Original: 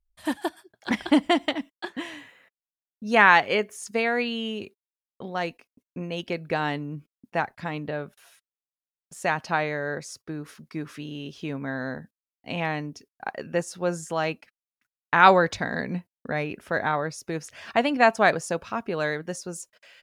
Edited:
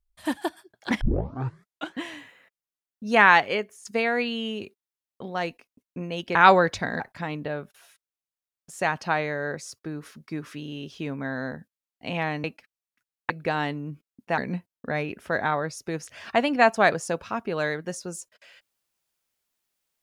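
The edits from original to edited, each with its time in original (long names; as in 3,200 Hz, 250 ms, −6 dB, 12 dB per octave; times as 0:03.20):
0:01.01: tape start 0.96 s
0:03.39–0:03.85: fade out, to −12.5 dB
0:06.35–0:07.43: swap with 0:15.14–0:15.79
0:12.87–0:14.28: remove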